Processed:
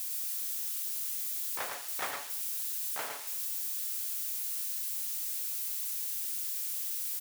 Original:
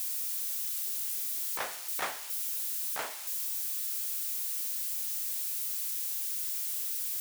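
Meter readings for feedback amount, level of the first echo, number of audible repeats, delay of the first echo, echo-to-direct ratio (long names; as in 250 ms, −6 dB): repeats not evenly spaced, −6.0 dB, 1, 109 ms, −4.5 dB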